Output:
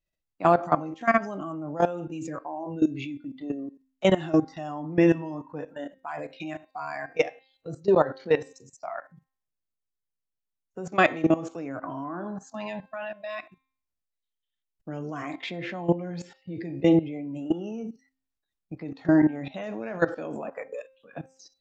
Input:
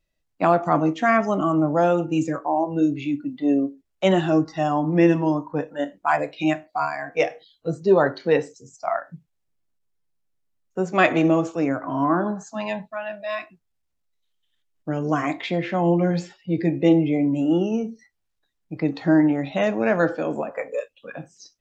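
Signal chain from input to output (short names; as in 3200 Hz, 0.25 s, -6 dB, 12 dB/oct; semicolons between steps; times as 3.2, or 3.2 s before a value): level quantiser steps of 17 dB; de-hum 264.1 Hz, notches 18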